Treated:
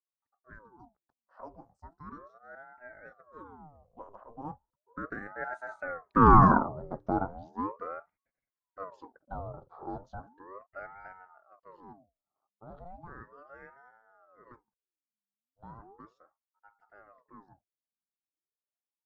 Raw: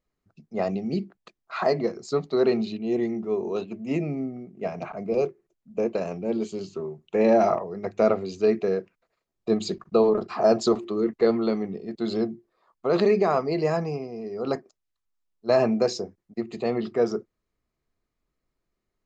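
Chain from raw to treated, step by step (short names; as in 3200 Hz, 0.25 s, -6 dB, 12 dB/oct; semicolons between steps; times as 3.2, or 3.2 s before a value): Doppler pass-by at 6.27, 48 m/s, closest 11 m; resonant high shelf 1500 Hz -14 dB, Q 3; ring modulator with a swept carrier 660 Hz, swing 70%, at 0.36 Hz; gain +3 dB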